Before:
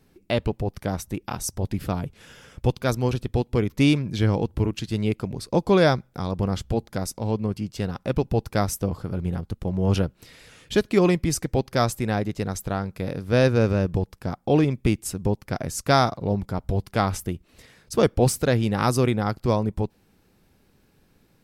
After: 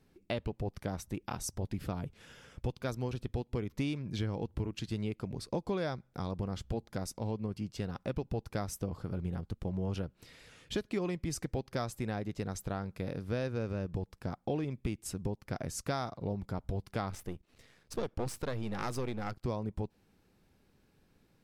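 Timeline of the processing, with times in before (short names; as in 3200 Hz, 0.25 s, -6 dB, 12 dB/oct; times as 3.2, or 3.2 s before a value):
17.1–19.43 half-wave gain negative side -12 dB
whole clip: high shelf 11000 Hz -7.5 dB; compressor 5:1, threshold -24 dBFS; gain -7 dB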